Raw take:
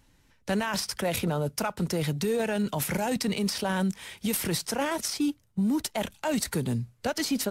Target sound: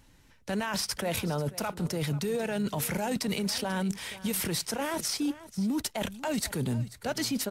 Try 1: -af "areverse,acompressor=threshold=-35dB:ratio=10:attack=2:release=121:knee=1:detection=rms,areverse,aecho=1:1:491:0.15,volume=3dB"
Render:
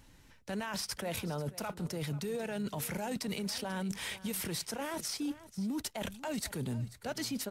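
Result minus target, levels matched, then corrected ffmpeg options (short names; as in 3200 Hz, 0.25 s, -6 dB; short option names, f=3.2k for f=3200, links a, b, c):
compressor: peak gain reduction +6.5 dB
-af "areverse,acompressor=threshold=-28dB:ratio=10:attack=2:release=121:knee=1:detection=rms,areverse,aecho=1:1:491:0.15,volume=3dB"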